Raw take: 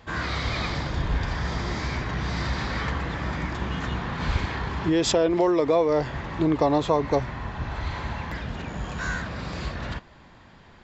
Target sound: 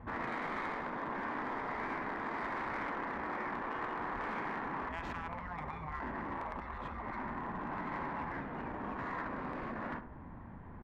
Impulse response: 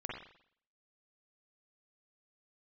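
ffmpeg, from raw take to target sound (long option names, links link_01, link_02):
-filter_complex "[0:a]afftfilt=real='re*lt(hypot(re,im),0.1)':imag='im*lt(hypot(re,im),0.1)':win_size=1024:overlap=0.75,adynamicsmooth=sensitivity=1.5:basefreq=960,lowshelf=frequency=240:gain=10,acompressor=threshold=-38dB:ratio=3,asoftclip=type=hard:threshold=-34.5dB,equalizer=frequency=250:width_type=o:width=1:gain=6,equalizer=frequency=1000:width_type=o:width=1:gain=10,equalizer=frequency=2000:width_type=o:width=1:gain=10,asplit=2[link_01][link_02];[link_02]adelay=70,lowpass=frequency=1500:poles=1,volume=-9dB,asplit=2[link_03][link_04];[link_04]adelay=70,lowpass=frequency=1500:poles=1,volume=0.49,asplit=2[link_05][link_06];[link_06]adelay=70,lowpass=frequency=1500:poles=1,volume=0.49,asplit=2[link_07][link_08];[link_08]adelay=70,lowpass=frequency=1500:poles=1,volume=0.49,asplit=2[link_09][link_10];[link_10]adelay=70,lowpass=frequency=1500:poles=1,volume=0.49,asplit=2[link_11][link_12];[link_12]adelay=70,lowpass=frequency=1500:poles=1,volume=0.49[link_13];[link_03][link_05][link_07][link_09][link_11][link_13]amix=inputs=6:normalize=0[link_14];[link_01][link_14]amix=inputs=2:normalize=0,volume=-6.5dB"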